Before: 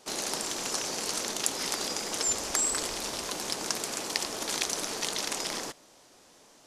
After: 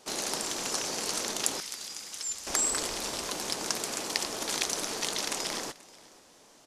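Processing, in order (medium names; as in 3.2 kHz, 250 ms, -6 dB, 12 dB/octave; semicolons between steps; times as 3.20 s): 1.60–2.47 s: amplifier tone stack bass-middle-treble 5-5-5; on a send: delay 484 ms -22 dB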